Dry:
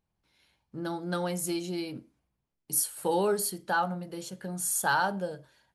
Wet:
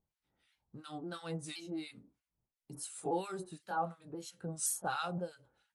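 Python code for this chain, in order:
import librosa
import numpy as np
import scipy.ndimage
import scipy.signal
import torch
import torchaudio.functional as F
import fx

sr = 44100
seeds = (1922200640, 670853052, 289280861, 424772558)

y = fx.pitch_ramps(x, sr, semitones=-2.5, every_ms=518)
y = fx.harmonic_tremolo(y, sr, hz=2.9, depth_pct=100, crossover_hz=1200.0)
y = F.gain(torch.from_numpy(y), -2.5).numpy()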